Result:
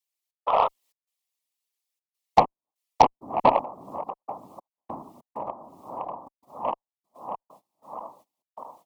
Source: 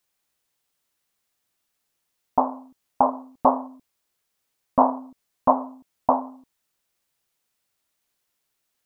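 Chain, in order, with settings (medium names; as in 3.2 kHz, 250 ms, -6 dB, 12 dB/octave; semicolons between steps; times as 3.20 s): backward echo that repeats 320 ms, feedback 74%, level -7 dB; gain riding within 3 dB 0.5 s; trance gate "xx..xx.xxxxxx." 98 bpm -60 dB; 0.47–0.68 s: painted sound noise 530–1300 Hz -21 dBFS; gate -54 dBFS, range -18 dB; 3.61–6.27 s: compression 16:1, threshold -29 dBFS, peak gain reduction 17 dB; high-pass 320 Hz 12 dB/octave; whisper effect; Chebyshev shaper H 2 -20 dB, 5 -20 dB, 7 -18 dB, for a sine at -4 dBFS; peaking EQ 1.5 kHz -14 dB 0.32 oct; tape noise reduction on one side only encoder only; trim +3 dB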